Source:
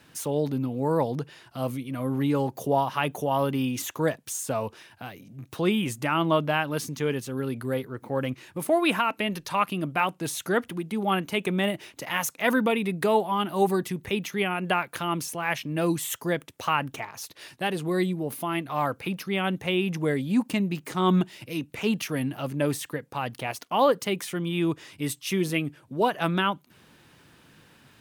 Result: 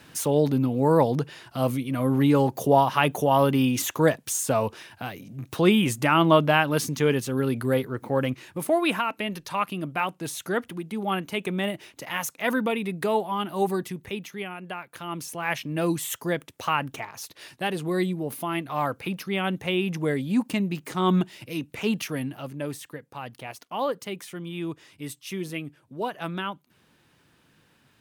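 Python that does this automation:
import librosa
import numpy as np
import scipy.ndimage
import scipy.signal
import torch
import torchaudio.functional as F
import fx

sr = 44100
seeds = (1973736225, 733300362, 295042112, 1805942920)

y = fx.gain(x, sr, db=fx.line((7.94, 5.0), (9.08, -2.0), (13.81, -2.0), (14.77, -11.0), (15.46, 0.0), (22.03, 0.0), (22.6, -6.5)))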